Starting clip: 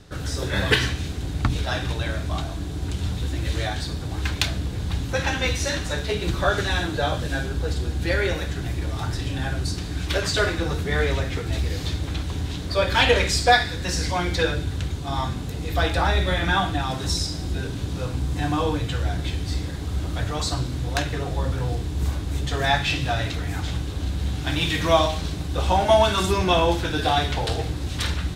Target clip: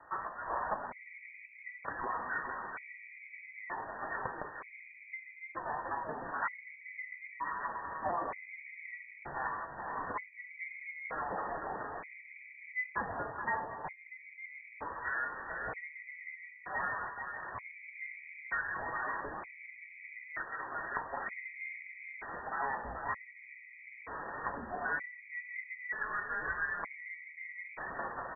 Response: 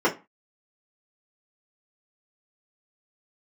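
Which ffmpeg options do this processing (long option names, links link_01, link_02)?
-filter_complex "[0:a]highpass=1100,acompressor=threshold=-37dB:ratio=10,flanger=delay=5.1:depth=1.8:regen=58:speed=0.59:shape=triangular,asplit=2[link_01][link_02];[link_02]aecho=0:1:231|434|591:0.119|0.473|0.237[link_03];[link_01][link_03]amix=inputs=2:normalize=0,lowpass=frequency=2200:width_type=q:width=0.5098,lowpass=frequency=2200:width_type=q:width=0.6013,lowpass=frequency=2200:width_type=q:width=0.9,lowpass=frequency=2200:width_type=q:width=2.563,afreqshift=-2600,afftfilt=real='re*gt(sin(2*PI*0.54*pts/sr)*(1-2*mod(floor(b*sr/1024/1900),2)),0)':imag='im*gt(sin(2*PI*0.54*pts/sr)*(1-2*mod(floor(b*sr/1024/1900),2)),0)':win_size=1024:overlap=0.75,volume=10.5dB"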